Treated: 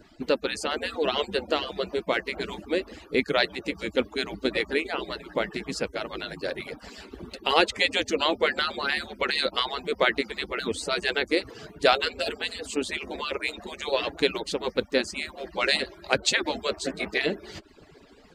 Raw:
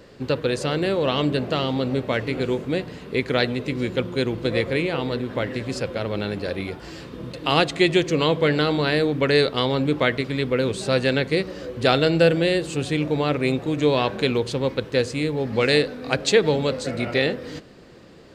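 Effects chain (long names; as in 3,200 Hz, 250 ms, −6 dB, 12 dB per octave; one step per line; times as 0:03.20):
harmonic-percussive split with one part muted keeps percussive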